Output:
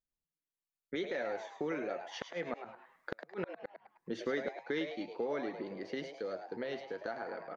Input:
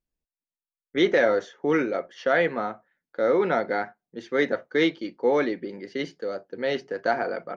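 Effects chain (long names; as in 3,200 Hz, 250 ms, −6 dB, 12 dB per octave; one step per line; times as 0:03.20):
camcorder AGC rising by 6.8 dB per second
source passing by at 0:03.46, 7 m/s, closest 2.8 metres
downward compressor 3 to 1, threshold −44 dBFS, peak gain reduction 18 dB
gate with flip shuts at −31 dBFS, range −39 dB
echo with shifted repeats 105 ms, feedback 41%, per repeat +140 Hz, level −8.5 dB
level +7.5 dB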